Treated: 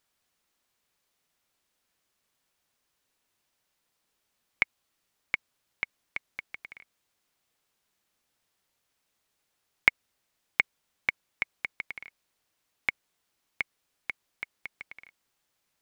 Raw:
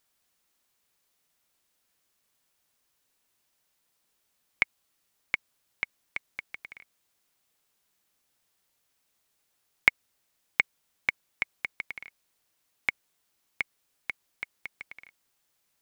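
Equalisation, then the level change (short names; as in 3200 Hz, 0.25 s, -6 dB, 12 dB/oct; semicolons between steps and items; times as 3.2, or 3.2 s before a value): high shelf 7200 Hz -6.5 dB; 0.0 dB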